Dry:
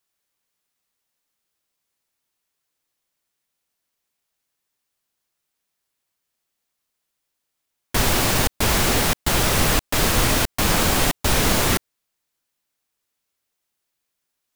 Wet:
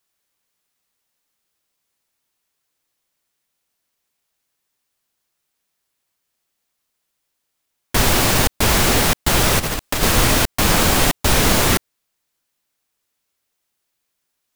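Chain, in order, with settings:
0:09.59–0:10.03: compressor whose output falls as the input rises −23 dBFS, ratio −0.5
level +3.5 dB

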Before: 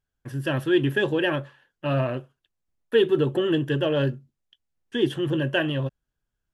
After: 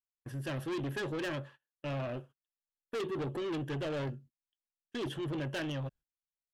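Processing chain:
noise gate −44 dBFS, range −25 dB
soft clipping −27 dBFS, distortion −7 dB
level −6 dB

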